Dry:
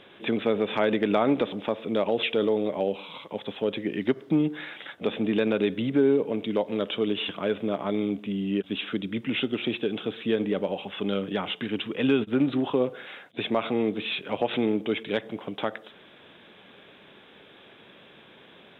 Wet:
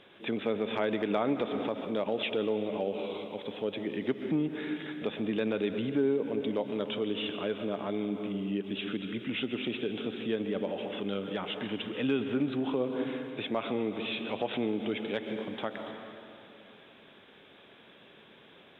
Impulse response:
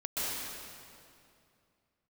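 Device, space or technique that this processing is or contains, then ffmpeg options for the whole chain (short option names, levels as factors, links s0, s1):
ducked reverb: -filter_complex "[0:a]asplit=3[s0][s1][s2];[1:a]atrim=start_sample=2205[s3];[s1][s3]afir=irnorm=-1:irlink=0[s4];[s2]apad=whole_len=828720[s5];[s4][s5]sidechaincompress=threshold=0.0355:ratio=8:attack=9.5:release=109,volume=0.335[s6];[s0][s6]amix=inputs=2:normalize=0,volume=0.447"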